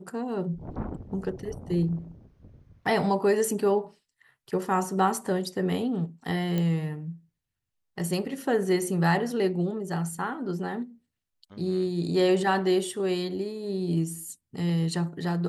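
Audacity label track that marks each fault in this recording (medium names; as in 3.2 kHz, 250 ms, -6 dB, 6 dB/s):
6.580000	6.580000	pop -17 dBFS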